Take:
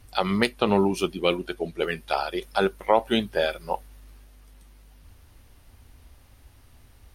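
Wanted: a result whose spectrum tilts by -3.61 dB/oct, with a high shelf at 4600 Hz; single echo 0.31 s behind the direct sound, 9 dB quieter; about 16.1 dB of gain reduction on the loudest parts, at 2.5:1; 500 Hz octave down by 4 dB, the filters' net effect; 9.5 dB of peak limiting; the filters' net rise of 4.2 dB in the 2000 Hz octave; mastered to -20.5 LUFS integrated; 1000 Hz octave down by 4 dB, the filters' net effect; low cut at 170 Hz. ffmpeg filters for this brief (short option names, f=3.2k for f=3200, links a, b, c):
-af "highpass=170,equalizer=f=500:t=o:g=-4,equalizer=f=1k:t=o:g=-5.5,equalizer=f=2k:t=o:g=6,highshelf=f=4.6k:g=5.5,acompressor=threshold=-41dB:ratio=2.5,alimiter=level_in=3dB:limit=-24dB:level=0:latency=1,volume=-3dB,aecho=1:1:310:0.355,volume=21dB"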